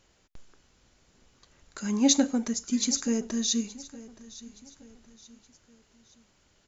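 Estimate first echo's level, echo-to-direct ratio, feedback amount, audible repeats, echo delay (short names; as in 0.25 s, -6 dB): -18.5 dB, -17.5 dB, 42%, 3, 0.871 s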